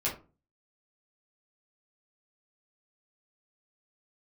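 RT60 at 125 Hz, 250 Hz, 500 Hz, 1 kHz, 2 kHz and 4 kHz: 0.50, 0.45, 0.35, 0.30, 0.25, 0.20 s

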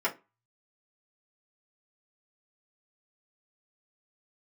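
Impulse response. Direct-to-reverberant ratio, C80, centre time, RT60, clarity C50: -7.0 dB, 24.5 dB, 12 ms, 0.25 s, 17.0 dB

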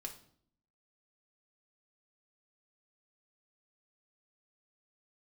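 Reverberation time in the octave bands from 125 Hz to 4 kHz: 0.85, 0.90, 0.65, 0.55, 0.45, 0.50 s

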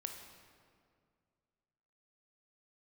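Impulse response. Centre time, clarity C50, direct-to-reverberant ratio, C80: 43 ms, 5.0 dB, 4.0 dB, 7.0 dB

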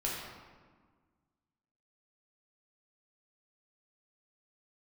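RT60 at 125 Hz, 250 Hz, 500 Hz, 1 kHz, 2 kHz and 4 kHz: 1.9, 2.0, 1.5, 1.6, 1.2, 0.90 s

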